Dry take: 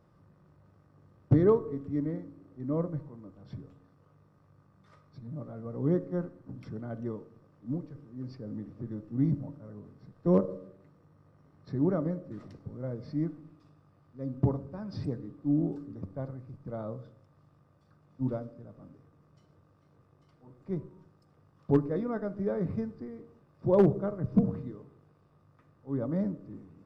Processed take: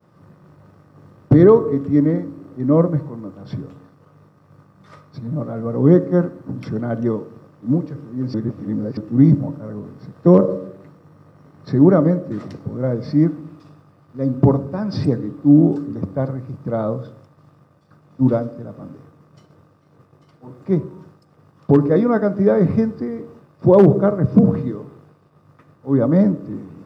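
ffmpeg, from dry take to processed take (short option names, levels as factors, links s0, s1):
-filter_complex "[0:a]asplit=3[s0][s1][s2];[s0]atrim=end=8.342[s3];[s1]atrim=start=8.338:end=8.972,asetpts=PTS-STARTPTS,areverse[s4];[s2]atrim=start=8.968[s5];[s3][s4]acrossfade=d=0.004:c1=hsin:c2=hsin[s6];[s6][s5]acrossfade=d=0.004:c1=hsin:c2=hsin,agate=range=0.0224:threshold=0.00126:ratio=3:detection=peak,highpass=110,alimiter=level_in=7.5:limit=0.891:release=50:level=0:latency=1,volume=0.891"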